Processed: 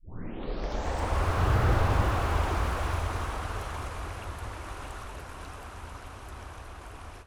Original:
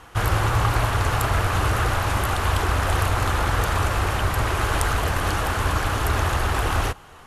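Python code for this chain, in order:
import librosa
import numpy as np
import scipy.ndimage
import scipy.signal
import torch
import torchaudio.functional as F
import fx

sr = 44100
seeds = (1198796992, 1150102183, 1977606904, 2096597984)

p1 = fx.tape_start_head(x, sr, length_s=1.73)
p2 = fx.doppler_pass(p1, sr, speed_mps=35, closest_m=13.0, pass_at_s=1.78)
p3 = p2 + fx.echo_single(p2, sr, ms=628, db=-13.0, dry=0)
y = fx.slew_limit(p3, sr, full_power_hz=40.0)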